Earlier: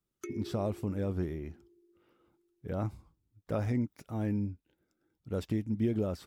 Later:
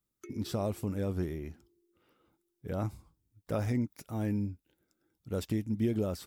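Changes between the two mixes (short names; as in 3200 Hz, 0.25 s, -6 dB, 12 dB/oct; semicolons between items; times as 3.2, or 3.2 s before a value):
speech: add high shelf 5100 Hz +10.5 dB; background -7.0 dB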